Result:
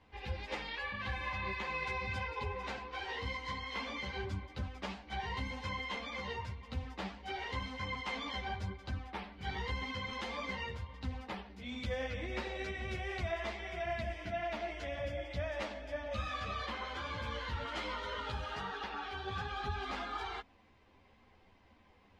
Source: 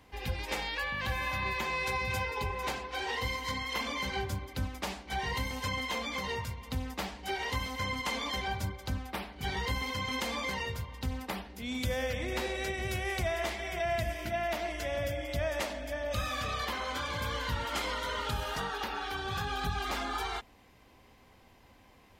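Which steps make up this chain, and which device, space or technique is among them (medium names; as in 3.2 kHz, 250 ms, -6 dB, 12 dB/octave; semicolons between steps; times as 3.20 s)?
string-machine ensemble chorus (three-phase chorus; low-pass 4.1 kHz 12 dB/octave); trim -2 dB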